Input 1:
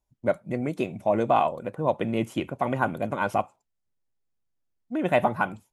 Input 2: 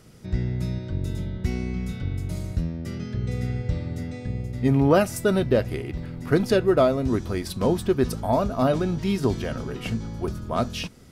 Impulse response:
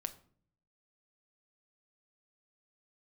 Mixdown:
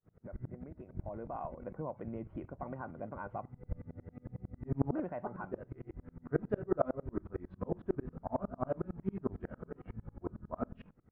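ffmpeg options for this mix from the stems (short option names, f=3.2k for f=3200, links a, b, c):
-filter_complex "[0:a]alimiter=limit=-20dB:level=0:latency=1:release=312,volume=-9.5dB,afade=t=in:st=0.91:d=0.64:silence=0.354813,asplit=2[a][b];[1:a]flanger=delay=19.5:depth=4.1:speed=1.3,acrusher=bits=7:mode=log:mix=0:aa=0.000001,aeval=exprs='val(0)*pow(10,-39*if(lt(mod(-11*n/s,1),2*abs(-11)/1000),1-mod(-11*n/s,1)/(2*abs(-11)/1000),(mod(-11*n/s,1)-2*abs(-11)/1000)/(1-2*abs(-11)/1000))/20)':c=same,volume=-4.5dB,asplit=2[c][d];[d]volume=-14.5dB[e];[b]apad=whole_len=490170[f];[c][f]sidechaincompress=threshold=-53dB:ratio=8:attack=30:release=316[g];[2:a]atrim=start_sample=2205[h];[e][h]afir=irnorm=-1:irlink=0[i];[a][g][i]amix=inputs=3:normalize=0,lowpass=f=1.6k:w=0.5412,lowpass=f=1.6k:w=1.3066"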